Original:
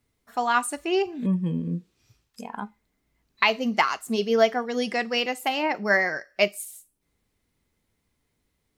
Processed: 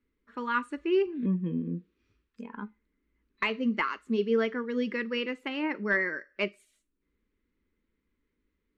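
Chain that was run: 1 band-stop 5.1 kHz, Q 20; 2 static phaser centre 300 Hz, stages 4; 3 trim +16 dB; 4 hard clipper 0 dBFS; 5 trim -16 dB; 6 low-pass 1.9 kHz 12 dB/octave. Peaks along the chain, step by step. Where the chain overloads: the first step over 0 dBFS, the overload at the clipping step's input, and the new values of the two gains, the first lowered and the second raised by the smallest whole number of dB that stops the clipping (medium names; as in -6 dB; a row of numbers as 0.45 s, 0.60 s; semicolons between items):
-4.0 dBFS, -7.0 dBFS, +9.0 dBFS, 0.0 dBFS, -16.0 dBFS, -16.0 dBFS; step 3, 9.0 dB; step 3 +7 dB, step 5 -7 dB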